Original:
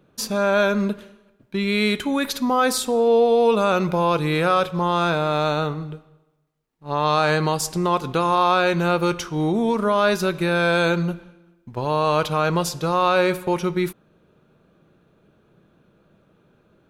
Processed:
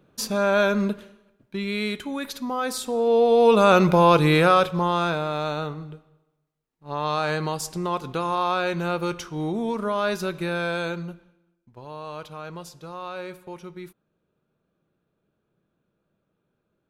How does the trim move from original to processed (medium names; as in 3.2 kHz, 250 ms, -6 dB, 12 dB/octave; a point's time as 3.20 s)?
0.87 s -1.5 dB
2.03 s -8 dB
2.67 s -8 dB
3.72 s +4 dB
4.27 s +4 dB
5.34 s -6 dB
10.48 s -6 dB
11.76 s -16.5 dB